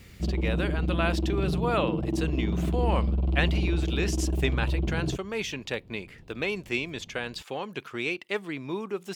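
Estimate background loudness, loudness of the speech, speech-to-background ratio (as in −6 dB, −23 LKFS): −29.0 LKFS, −32.0 LKFS, −3.0 dB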